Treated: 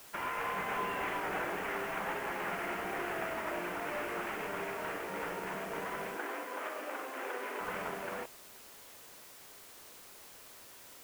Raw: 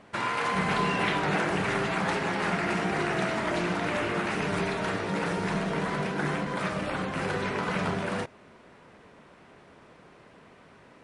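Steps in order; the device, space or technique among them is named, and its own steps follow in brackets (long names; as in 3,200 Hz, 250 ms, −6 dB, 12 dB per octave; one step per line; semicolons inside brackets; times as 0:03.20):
army field radio (band-pass filter 360–2,900 Hz; variable-slope delta modulation 16 kbit/s; white noise bed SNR 15 dB)
0:06.17–0:07.61: elliptic high-pass filter 250 Hz, stop band 50 dB
level −6.5 dB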